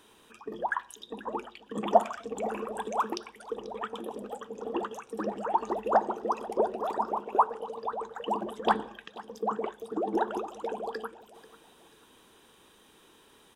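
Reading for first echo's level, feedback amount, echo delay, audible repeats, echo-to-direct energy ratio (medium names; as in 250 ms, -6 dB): -19.0 dB, 34%, 488 ms, 2, -18.5 dB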